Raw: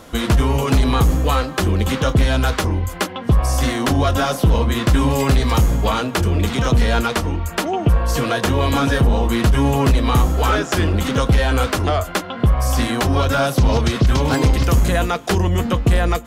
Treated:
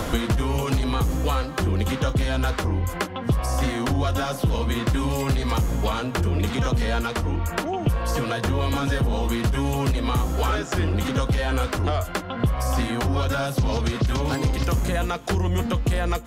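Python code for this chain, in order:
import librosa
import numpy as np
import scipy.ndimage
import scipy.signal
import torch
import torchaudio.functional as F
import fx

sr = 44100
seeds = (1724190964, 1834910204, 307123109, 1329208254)

y = fx.band_squash(x, sr, depth_pct=100)
y = y * 10.0 ** (-7.5 / 20.0)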